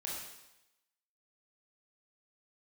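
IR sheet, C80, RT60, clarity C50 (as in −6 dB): 3.5 dB, 0.90 s, 0.5 dB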